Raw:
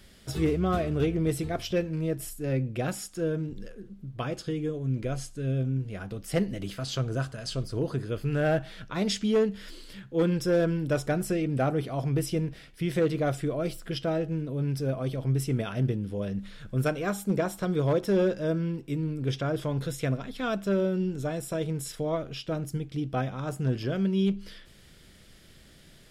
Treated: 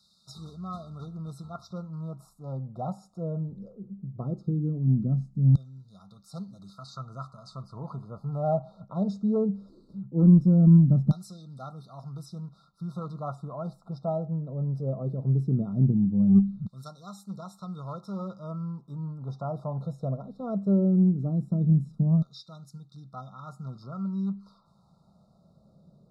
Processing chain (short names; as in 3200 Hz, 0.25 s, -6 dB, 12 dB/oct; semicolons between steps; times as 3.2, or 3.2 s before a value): bell 470 Hz -5.5 dB 0.42 oct; LFO band-pass saw down 0.18 Hz 200–3200 Hz; resonant low shelf 240 Hz +9.5 dB, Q 3; added harmonics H 2 -23 dB, 8 -44 dB, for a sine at -14 dBFS; brick-wall FIR band-stop 1400–3600 Hz; gain +5 dB